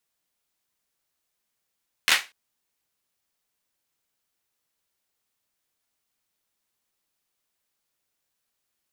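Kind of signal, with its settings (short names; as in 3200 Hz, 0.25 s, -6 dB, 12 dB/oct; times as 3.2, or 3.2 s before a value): hand clap length 0.24 s, apart 12 ms, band 2100 Hz, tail 0.25 s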